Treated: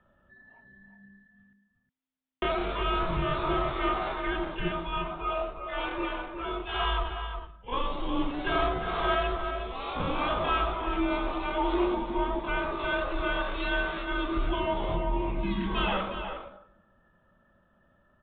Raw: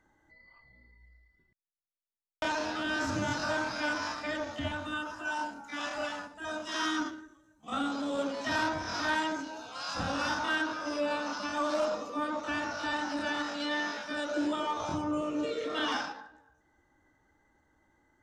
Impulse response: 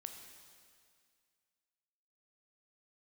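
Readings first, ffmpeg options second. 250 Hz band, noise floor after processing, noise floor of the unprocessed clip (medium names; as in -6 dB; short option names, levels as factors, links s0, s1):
+2.0 dB, -67 dBFS, -73 dBFS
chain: -filter_complex "[0:a]asplit=2[s0][s1];[s1]adelay=361.5,volume=0.447,highshelf=f=4000:g=-8.13[s2];[s0][s2]amix=inputs=2:normalize=0,afreqshift=-260,aresample=8000,aresample=44100,volume=1.5"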